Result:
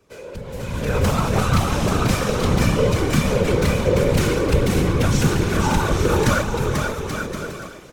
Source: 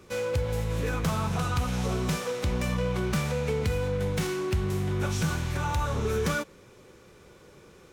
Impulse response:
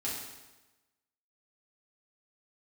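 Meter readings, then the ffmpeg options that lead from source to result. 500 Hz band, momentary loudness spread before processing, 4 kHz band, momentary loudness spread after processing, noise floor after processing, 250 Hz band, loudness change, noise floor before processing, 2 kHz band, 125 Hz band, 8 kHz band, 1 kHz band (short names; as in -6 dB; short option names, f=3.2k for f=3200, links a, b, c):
+9.5 dB, 2 LU, +9.5 dB, 11 LU, -38 dBFS, +10.5 dB, +9.0 dB, -54 dBFS, +9.0 dB, +8.5 dB, +10.0 dB, +9.5 dB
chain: -af "aecho=1:1:490|833|1073|1241|1359:0.631|0.398|0.251|0.158|0.1,afftfilt=real='hypot(re,im)*cos(2*PI*random(0))':imag='hypot(re,im)*sin(2*PI*random(1))':win_size=512:overlap=0.75,dynaudnorm=f=140:g=11:m=16.5dB,volume=-1.5dB"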